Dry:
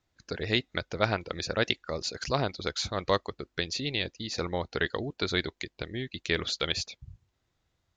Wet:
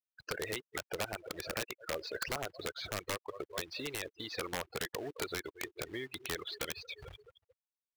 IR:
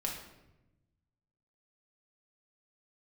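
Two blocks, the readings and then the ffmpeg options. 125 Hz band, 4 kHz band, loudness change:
−13.5 dB, −10.0 dB, −8.5 dB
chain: -filter_complex "[0:a]acrossover=split=3800[link_01][link_02];[link_02]acompressor=threshold=-41dB:ratio=4:attack=1:release=60[link_03];[link_01][link_03]amix=inputs=2:normalize=0,aecho=1:1:218|436|654|872|1090:0.0794|0.0477|0.0286|0.0172|0.0103,asplit=2[link_04][link_05];[1:a]atrim=start_sample=2205,atrim=end_sample=4410[link_06];[link_05][link_06]afir=irnorm=-1:irlink=0,volume=-19.5dB[link_07];[link_04][link_07]amix=inputs=2:normalize=0,acompressor=threshold=-40dB:ratio=16,equalizer=frequency=210:width_type=o:width=0.55:gain=-8,afftfilt=real='re*gte(hypot(re,im),0.00562)':imag='im*gte(hypot(re,im),0.00562)':win_size=1024:overlap=0.75,acrusher=bits=4:mode=log:mix=0:aa=0.000001,bass=frequency=250:gain=-15,treble=frequency=4000:gain=-13,aeval=exprs='(mod(70.8*val(0)+1,2)-1)/70.8':channel_layout=same,volume=10dB"

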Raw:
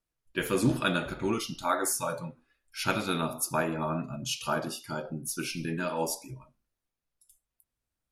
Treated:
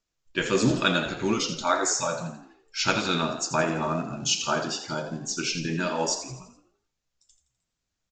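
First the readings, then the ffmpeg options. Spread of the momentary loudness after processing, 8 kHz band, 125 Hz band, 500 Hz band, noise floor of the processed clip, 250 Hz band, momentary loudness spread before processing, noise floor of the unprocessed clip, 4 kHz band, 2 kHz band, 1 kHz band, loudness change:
9 LU, +6.0 dB, +3.0 dB, +4.0 dB, −83 dBFS, +3.5 dB, 10 LU, below −85 dBFS, +8.0 dB, +5.0 dB, +4.0 dB, +4.5 dB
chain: -filter_complex "[0:a]asplit=2[link_01][link_02];[link_02]acrusher=bits=5:mode=log:mix=0:aa=0.000001,volume=-6dB[link_03];[link_01][link_03]amix=inputs=2:normalize=0,flanger=delay=4.7:depth=1.8:regen=84:speed=1.5:shape=sinusoidal,highshelf=frequency=4300:gain=10.5,aresample=16000,aresample=44100,bandreject=frequency=50:width_type=h:width=6,bandreject=frequency=100:width_type=h:width=6,bandreject=frequency=150:width_type=h:width=6,asplit=2[link_04][link_05];[link_05]asplit=5[link_06][link_07][link_08][link_09][link_10];[link_06]adelay=84,afreqshift=55,volume=-11dB[link_11];[link_07]adelay=168,afreqshift=110,volume=-17.6dB[link_12];[link_08]adelay=252,afreqshift=165,volume=-24.1dB[link_13];[link_09]adelay=336,afreqshift=220,volume=-30.7dB[link_14];[link_10]adelay=420,afreqshift=275,volume=-37.2dB[link_15];[link_11][link_12][link_13][link_14][link_15]amix=inputs=5:normalize=0[link_16];[link_04][link_16]amix=inputs=2:normalize=0,volume=4dB"

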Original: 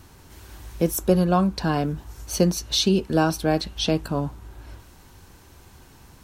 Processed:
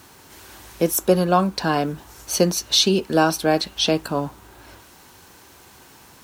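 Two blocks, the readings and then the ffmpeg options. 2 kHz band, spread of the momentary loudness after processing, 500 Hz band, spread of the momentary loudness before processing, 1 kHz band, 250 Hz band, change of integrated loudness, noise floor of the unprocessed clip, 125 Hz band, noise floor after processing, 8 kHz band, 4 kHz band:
+5.5 dB, 10 LU, +3.5 dB, 10 LU, +4.5 dB, 0.0 dB, +3.0 dB, −51 dBFS, −2.0 dB, −49 dBFS, +5.5 dB, +5.5 dB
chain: -af "acrusher=bits=9:mix=0:aa=0.000001,highpass=frequency=370:poles=1,volume=5.5dB"

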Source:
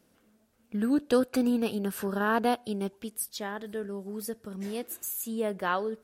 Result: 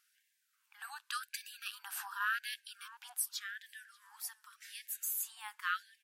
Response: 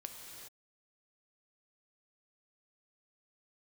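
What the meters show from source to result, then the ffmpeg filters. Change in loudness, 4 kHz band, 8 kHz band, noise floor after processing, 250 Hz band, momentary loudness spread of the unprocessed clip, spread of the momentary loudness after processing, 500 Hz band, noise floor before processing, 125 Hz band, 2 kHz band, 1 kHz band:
−9.5 dB, −2.0 dB, −2.0 dB, −79 dBFS, below −40 dB, 11 LU, 15 LU, below −40 dB, −67 dBFS, below −40 dB, −2.0 dB, −10.0 dB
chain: -filter_complex "[0:a]asplit=2[link_01][link_02];[link_02]adelay=586,lowpass=frequency=4000:poles=1,volume=-22.5dB,asplit=2[link_03][link_04];[link_04]adelay=586,lowpass=frequency=4000:poles=1,volume=0.42,asplit=2[link_05][link_06];[link_06]adelay=586,lowpass=frequency=4000:poles=1,volume=0.42[link_07];[link_01][link_03][link_05][link_07]amix=inputs=4:normalize=0,afftfilt=real='re*gte(b*sr/1024,730*pow(1600/730,0.5+0.5*sin(2*PI*0.88*pts/sr)))':imag='im*gte(b*sr/1024,730*pow(1600/730,0.5+0.5*sin(2*PI*0.88*pts/sr)))':win_size=1024:overlap=0.75,volume=-2dB"

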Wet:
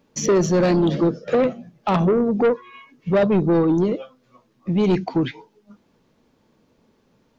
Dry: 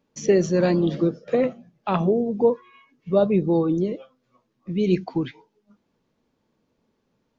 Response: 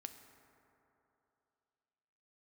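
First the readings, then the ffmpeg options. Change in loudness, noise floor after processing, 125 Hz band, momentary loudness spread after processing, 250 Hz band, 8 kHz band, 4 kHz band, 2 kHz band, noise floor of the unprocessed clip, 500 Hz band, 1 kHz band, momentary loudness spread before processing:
+2.5 dB, −63 dBFS, +3.5 dB, 11 LU, +3.0 dB, can't be measured, +5.0 dB, +4.5 dB, −73 dBFS, +2.0 dB, +4.5 dB, 10 LU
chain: -filter_complex "[0:a]asplit=2[link_01][link_02];[link_02]acompressor=threshold=-29dB:ratio=6,volume=-2dB[link_03];[link_01][link_03]amix=inputs=2:normalize=0,asoftclip=type=tanh:threshold=-17dB,volume=4.5dB"

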